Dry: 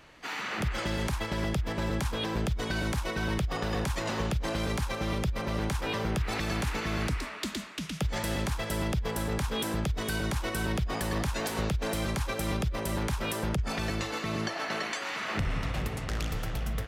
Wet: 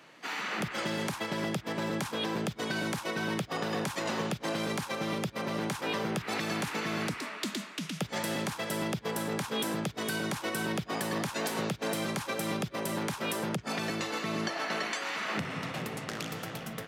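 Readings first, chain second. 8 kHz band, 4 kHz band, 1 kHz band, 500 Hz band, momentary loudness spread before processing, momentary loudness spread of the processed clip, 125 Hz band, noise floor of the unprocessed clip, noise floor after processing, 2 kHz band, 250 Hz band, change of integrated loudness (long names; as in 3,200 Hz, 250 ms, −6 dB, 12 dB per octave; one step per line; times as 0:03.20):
0.0 dB, 0.0 dB, 0.0 dB, 0.0 dB, 3 LU, 3 LU, −7.0 dB, −37 dBFS, −47 dBFS, 0.0 dB, −0.5 dB, −1.5 dB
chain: high-pass filter 150 Hz 24 dB per octave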